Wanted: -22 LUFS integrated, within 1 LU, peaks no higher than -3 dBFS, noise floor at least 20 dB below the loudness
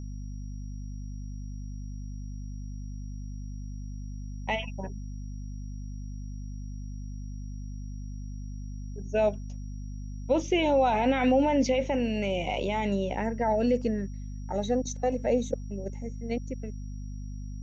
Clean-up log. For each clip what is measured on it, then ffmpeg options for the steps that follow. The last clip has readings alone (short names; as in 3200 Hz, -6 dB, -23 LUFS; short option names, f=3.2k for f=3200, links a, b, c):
hum 50 Hz; harmonics up to 250 Hz; hum level -35 dBFS; steady tone 5700 Hz; tone level -60 dBFS; loudness -31.5 LUFS; peak -13.0 dBFS; loudness target -22.0 LUFS
-> -af "bandreject=f=50:t=h:w=4,bandreject=f=100:t=h:w=4,bandreject=f=150:t=h:w=4,bandreject=f=200:t=h:w=4,bandreject=f=250:t=h:w=4"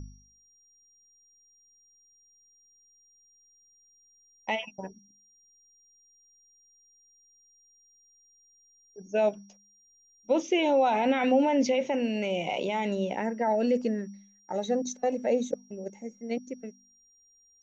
hum none; steady tone 5700 Hz; tone level -60 dBFS
-> -af "bandreject=f=5.7k:w=30"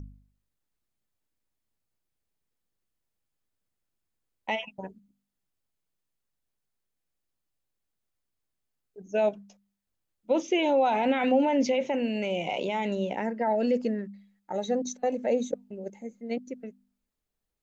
steady tone none; loudness -28.0 LUFS; peak -13.0 dBFS; loudness target -22.0 LUFS
-> -af "volume=6dB"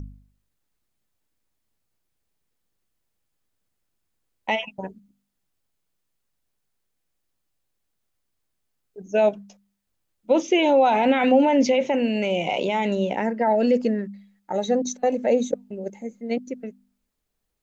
loudness -22.0 LUFS; peak -7.0 dBFS; noise floor -77 dBFS